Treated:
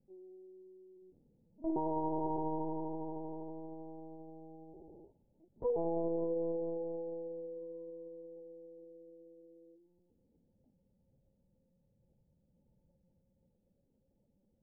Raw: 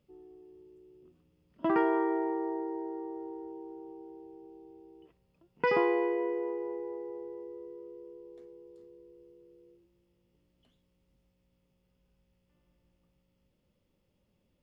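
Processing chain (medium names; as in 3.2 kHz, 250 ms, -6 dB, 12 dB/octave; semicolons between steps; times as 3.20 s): Chebyshev low-pass 920 Hz, order 8; peak limiter -27 dBFS, peak gain reduction 8.5 dB; level-controlled noise filter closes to 670 Hz, open at -34 dBFS; LPC vocoder at 8 kHz pitch kept; dynamic bell 160 Hz, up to -4 dB, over -58 dBFS, Q 4.4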